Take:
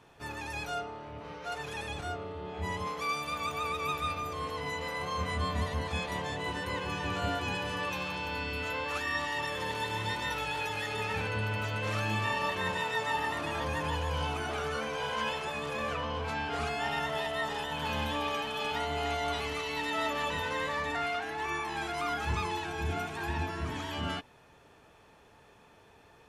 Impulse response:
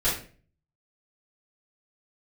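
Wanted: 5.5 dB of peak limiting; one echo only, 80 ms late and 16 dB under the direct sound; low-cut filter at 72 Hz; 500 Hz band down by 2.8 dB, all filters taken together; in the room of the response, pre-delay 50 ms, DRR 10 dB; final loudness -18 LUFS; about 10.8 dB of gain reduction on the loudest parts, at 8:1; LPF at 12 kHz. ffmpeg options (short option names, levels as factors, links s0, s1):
-filter_complex "[0:a]highpass=72,lowpass=12000,equalizer=f=500:t=o:g=-3.5,acompressor=threshold=0.01:ratio=8,alimiter=level_in=3.98:limit=0.0631:level=0:latency=1,volume=0.251,aecho=1:1:80:0.158,asplit=2[s0][s1];[1:a]atrim=start_sample=2205,adelay=50[s2];[s1][s2]afir=irnorm=-1:irlink=0,volume=0.0841[s3];[s0][s3]amix=inputs=2:normalize=0,volume=20"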